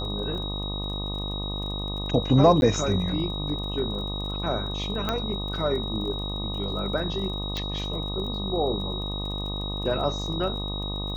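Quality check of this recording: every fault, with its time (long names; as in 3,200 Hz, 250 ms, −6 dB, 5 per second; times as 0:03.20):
mains buzz 50 Hz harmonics 25 −32 dBFS
surface crackle 26 per second −36 dBFS
whistle 3,800 Hz −33 dBFS
0:02.61–0:02.62: drop-out
0:05.09: click −12 dBFS
0:07.57: click −16 dBFS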